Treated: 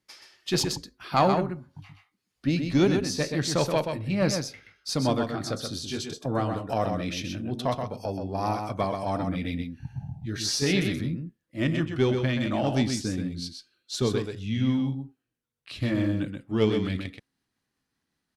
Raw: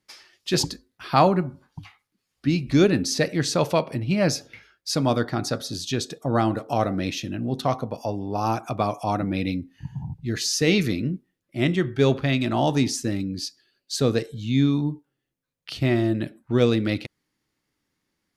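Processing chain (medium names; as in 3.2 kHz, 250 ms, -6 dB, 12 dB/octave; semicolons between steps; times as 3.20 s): pitch bend over the whole clip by -2 st starting unshifted; Chebyshev shaper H 4 -23 dB, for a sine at -5.5 dBFS; delay 127 ms -6 dB; trim -3 dB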